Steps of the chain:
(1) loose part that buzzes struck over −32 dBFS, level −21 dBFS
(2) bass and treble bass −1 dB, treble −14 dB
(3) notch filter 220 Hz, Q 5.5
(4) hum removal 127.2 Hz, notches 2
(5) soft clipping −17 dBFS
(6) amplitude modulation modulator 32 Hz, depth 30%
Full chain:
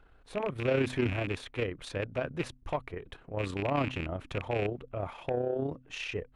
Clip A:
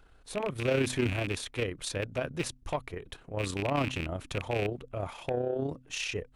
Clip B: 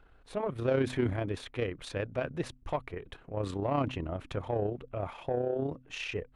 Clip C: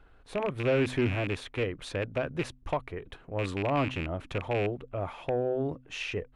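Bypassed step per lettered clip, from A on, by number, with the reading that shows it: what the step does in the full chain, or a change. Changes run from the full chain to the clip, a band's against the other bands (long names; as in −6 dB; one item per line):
2, 8 kHz band +12.0 dB
1, 2 kHz band −4.0 dB
6, change in crest factor −1.5 dB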